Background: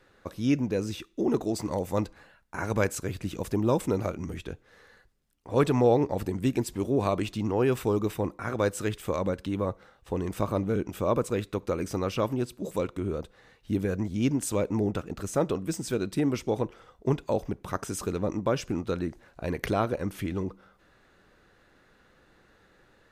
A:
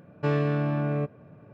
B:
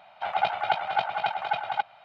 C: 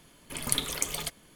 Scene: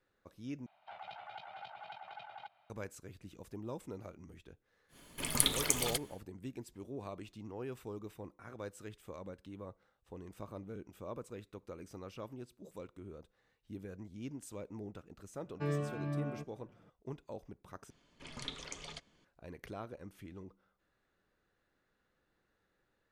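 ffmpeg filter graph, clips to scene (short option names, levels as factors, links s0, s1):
-filter_complex "[3:a]asplit=2[s0][s1];[0:a]volume=0.119[s2];[2:a]acrossover=split=140|3000[s3][s4][s5];[s4]acompressor=threshold=0.0447:ratio=6:attack=3.2:release=140:knee=2.83:detection=peak[s6];[s3][s6][s5]amix=inputs=3:normalize=0[s7];[1:a]asplit=2[s8][s9];[s9]adelay=4.8,afreqshift=-2.4[s10];[s8][s10]amix=inputs=2:normalize=1[s11];[s1]lowpass=f=6400:w=0.5412,lowpass=f=6400:w=1.3066[s12];[s2]asplit=3[s13][s14][s15];[s13]atrim=end=0.664[s16];[s7]atrim=end=2.04,asetpts=PTS-STARTPTS,volume=0.141[s17];[s14]atrim=start=2.696:end=17.904[s18];[s12]atrim=end=1.35,asetpts=PTS-STARTPTS,volume=0.266[s19];[s15]atrim=start=19.246[s20];[s0]atrim=end=1.35,asetpts=PTS-STARTPTS,volume=0.891,afade=t=in:d=0.1,afade=t=out:st=1.25:d=0.1,adelay=4880[s21];[s11]atrim=end=1.53,asetpts=PTS-STARTPTS,volume=0.355,afade=t=in:d=0.004:c=hsin,afade=t=out:st=1.526:d=0.004:c=hsin,adelay=15370[s22];[s16][s17]acrossfade=d=0.004:c1=hsin:c2=hsin[s23];[s23][s18]acrossfade=d=0.004:c1=hsin:c2=hsin[s24];[s24][s19]acrossfade=d=0.004:c1=hsin:c2=hsin[s25];[s25][s20]acrossfade=d=0.004:c1=hsin:c2=hsin[s26];[s26][s21][s22]amix=inputs=3:normalize=0"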